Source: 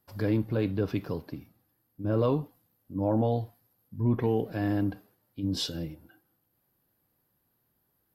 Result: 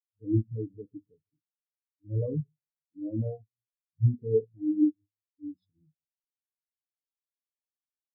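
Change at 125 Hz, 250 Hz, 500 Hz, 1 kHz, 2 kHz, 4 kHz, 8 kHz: -0.5 dB, -2.0 dB, -3.5 dB, under -25 dB, under -40 dB, under -40 dB, under -30 dB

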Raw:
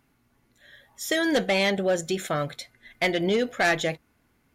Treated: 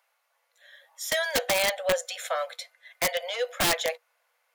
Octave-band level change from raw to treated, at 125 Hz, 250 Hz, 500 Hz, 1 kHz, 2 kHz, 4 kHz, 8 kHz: -12.0, -14.5, -3.5, -1.5, -2.5, +1.0, +5.0 dB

